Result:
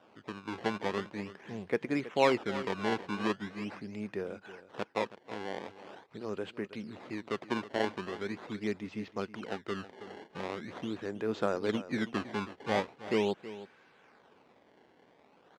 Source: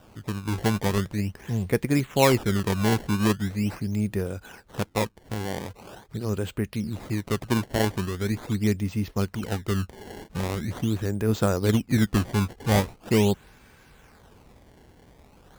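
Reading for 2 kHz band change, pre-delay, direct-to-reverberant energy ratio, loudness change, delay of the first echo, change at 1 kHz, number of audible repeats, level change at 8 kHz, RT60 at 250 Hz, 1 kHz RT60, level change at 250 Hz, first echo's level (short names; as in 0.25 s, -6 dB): -5.5 dB, none, none, -9.0 dB, 0.322 s, -5.0 dB, 1, -18.5 dB, none, none, -10.5 dB, -15.0 dB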